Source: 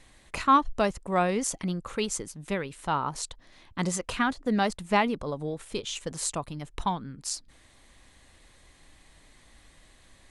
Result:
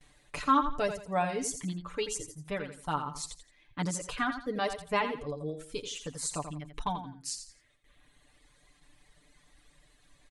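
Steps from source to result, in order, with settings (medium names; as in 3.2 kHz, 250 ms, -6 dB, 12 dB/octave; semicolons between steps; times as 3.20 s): gate with hold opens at -47 dBFS; reverb removal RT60 1.4 s; comb 6.8 ms, depth 75%; feedback delay 85 ms, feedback 29%, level -9 dB; trim -6 dB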